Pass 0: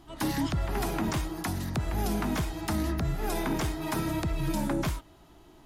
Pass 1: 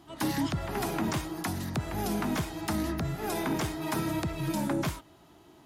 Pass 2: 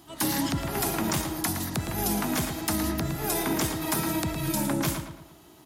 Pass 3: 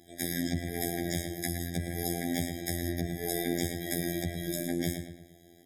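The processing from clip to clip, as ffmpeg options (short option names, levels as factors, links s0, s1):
-af "highpass=94"
-filter_complex "[0:a]crystalizer=i=2:c=0,asplit=2[s0][s1];[s1]adelay=112,lowpass=f=3100:p=1,volume=0.501,asplit=2[s2][s3];[s3]adelay=112,lowpass=f=3100:p=1,volume=0.43,asplit=2[s4][s5];[s5]adelay=112,lowpass=f=3100:p=1,volume=0.43,asplit=2[s6][s7];[s7]adelay=112,lowpass=f=3100:p=1,volume=0.43,asplit=2[s8][s9];[s9]adelay=112,lowpass=f=3100:p=1,volume=0.43[s10];[s2][s4][s6][s8][s10]amix=inputs=5:normalize=0[s11];[s0][s11]amix=inputs=2:normalize=0,volume=1.12"
-af "afftfilt=real='hypot(re,im)*cos(PI*b)':imag='0':win_size=2048:overlap=0.75,afftfilt=real='re*eq(mod(floor(b*sr/1024/790),2),0)':imag='im*eq(mod(floor(b*sr/1024/790),2),0)':win_size=1024:overlap=0.75"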